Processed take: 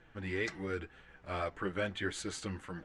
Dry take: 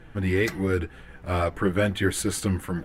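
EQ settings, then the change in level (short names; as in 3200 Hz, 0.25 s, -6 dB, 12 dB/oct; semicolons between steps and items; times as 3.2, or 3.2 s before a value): LPF 7300 Hz 24 dB/oct; low shelf 380 Hz -8.5 dB; -8.5 dB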